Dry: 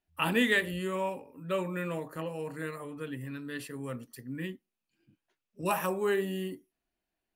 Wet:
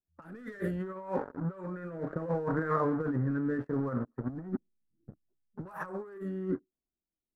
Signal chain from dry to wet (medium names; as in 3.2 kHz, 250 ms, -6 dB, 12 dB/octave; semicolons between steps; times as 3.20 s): level-controlled noise filter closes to 360 Hz, open at -25 dBFS; 4.29–5.66 s: tilt EQ -3.5 dB/octave; waveshaping leveller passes 3; resonant high shelf 2 kHz -11 dB, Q 3; compressor with a negative ratio -28 dBFS, ratio -0.5; rotary cabinet horn 0.65 Hz; trim -3.5 dB